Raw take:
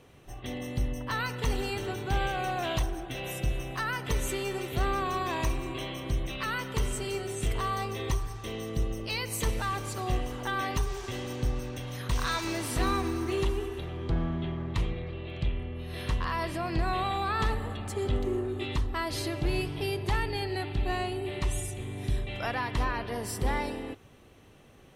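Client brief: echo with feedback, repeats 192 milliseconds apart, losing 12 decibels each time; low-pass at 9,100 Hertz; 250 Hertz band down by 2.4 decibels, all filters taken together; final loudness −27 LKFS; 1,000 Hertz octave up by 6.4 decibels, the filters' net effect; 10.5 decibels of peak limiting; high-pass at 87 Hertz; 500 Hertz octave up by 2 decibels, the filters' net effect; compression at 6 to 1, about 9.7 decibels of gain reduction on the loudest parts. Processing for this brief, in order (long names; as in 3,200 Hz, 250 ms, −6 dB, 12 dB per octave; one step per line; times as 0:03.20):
high-pass filter 87 Hz
low-pass filter 9,100 Hz
parametric band 250 Hz −6 dB
parametric band 500 Hz +3.5 dB
parametric band 1,000 Hz +7.5 dB
downward compressor 6 to 1, threshold −33 dBFS
brickwall limiter −31.5 dBFS
repeating echo 192 ms, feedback 25%, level −12 dB
level +13 dB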